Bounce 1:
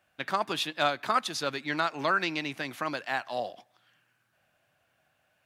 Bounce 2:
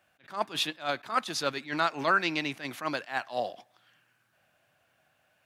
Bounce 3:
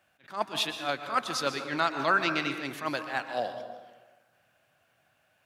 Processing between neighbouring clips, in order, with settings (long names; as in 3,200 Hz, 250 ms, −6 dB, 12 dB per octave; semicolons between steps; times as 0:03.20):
low-shelf EQ 68 Hz −5.5 dB; level that may rise only so fast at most 210 dB per second; level +2 dB
dense smooth reverb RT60 1.3 s, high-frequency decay 0.5×, pre-delay 110 ms, DRR 8 dB